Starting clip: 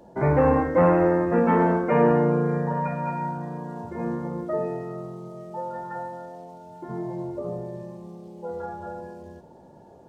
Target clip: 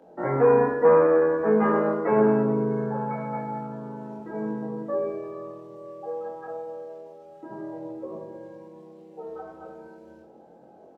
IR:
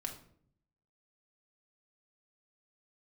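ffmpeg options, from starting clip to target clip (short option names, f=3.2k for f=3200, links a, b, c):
-filter_complex "[0:a]acrossover=split=240 2700:gain=0.126 1 0.2[a][b][c];[a][b][c]amix=inputs=3:normalize=0,asplit=2[d][e];[e]adelay=21,volume=-2dB[f];[d][f]amix=inputs=2:normalize=0,asplit=2[g][h];[1:a]atrim=start_sample=2205,highshelf=f=2.6k:g=11.5[i];[h][i]afir=irnorm=-1:irlink=0,volume=-2.5dB[j];[g][j]amix=inputs=2:normalize=0,asetrate=40517,aresample=44100,volume=-6dB"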